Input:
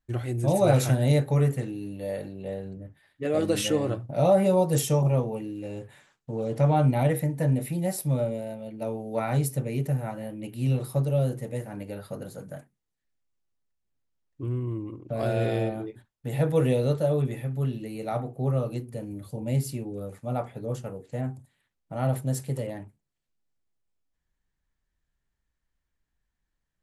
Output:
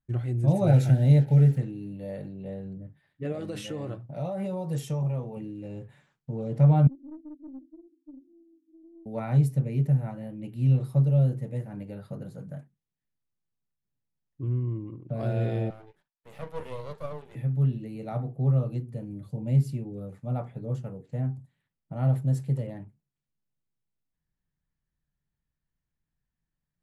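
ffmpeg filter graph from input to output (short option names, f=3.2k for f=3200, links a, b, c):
-filter_complex "[0:a]asettb=1/sr,asplit=3[a][b][c];[a]atrim=end=0.674[d];[b]atrim=start=0.67:end=1.58,asetpts=PTS-STARTPTS,afade=t=in:d=0.004:c=qsin,afade=t=out:st=0.906:d=0.004:c=qsin,acrusher=bits=6:mix=0:aa=0.5,asuperstop=centerf=1100:order=8:qfactor=3.1[e];[c]atrim=start=1.576[f];[d][e]acrossfade=d=0.004:c1=hsin:c2=qsin[g];[g][f]acrossfade=d=0.004:c1=qsin:c2=hsin,asettb=1/sr,asplit=3[h][i][j];[h]atrim=end=3.324[k];[i]atrim=start=3.32:end=5.37,asetpts=PTS-STARTPTS,afade=t=in:d=0.004:c=qsin,afade=t=out:st=2.046:d=0.004:c=qsin,lowshelf=f=350:g=-8,acompressor=threshold=-26dB:ratio=3:attack=3.2:release=140:knee=1:detection=peak[l];[j]atrim=start=5.366[m];[k][l]acrossfade=d=0.004:c1=hsin:c2=qsin[n];[n][m]acrossfade=d=0.004:c1=qsin:c2=hsin,asettb=1/sr,asplit=3[o][p][q];[o]atrim=end=6.874[r];[p]atrim=start=6.87:end=9.06,asetpts=PTS-STARTPTS,afade=t=in:d=0.004:c=qsin,afade=t=out:st=2.186:d=0.004:c=qsin,asuperpass=centerf=300:order=12:qfactor=4.2,aeval=exprs='(tanh(44.7*val(0)+0.35)-tanh(0.35))/44.7':c=same[s];[q]atrim=start=9.056[t];[r][s]acrossfade=d=0.004:c1=hsin:c2=qsin[u];[u][t]acrossfade=d=0.004:c1=qsin:c2=hsin,asettb=1/sr,asplit=3[v][w][x];[v]atrim=end=15.704[y];[w]atrim=start=15.7:end=17.35,asetpts=PTS-STARTPTS,afade=t=in:d=0.004:c=qsin,afade=t=out:st=1.646:d=0.004:c=qsin,highpass=f=460:w=0.5412,highpass=f=460:w=1.3066,aeval=exprs='max(val(0),0)':c=same[z];[x]atrim=start=17.346[aa];[y][z]acrossfade=d=0.004:c1=hsin:c2=qsin[ab];[ab][aa]acrossfade=d=0.004:c1=qsin:c2=hsin,lowpass=f=3.8k:p=1,equalizer=f=150:w=1.2:g=11.5,volume=-6.5dB"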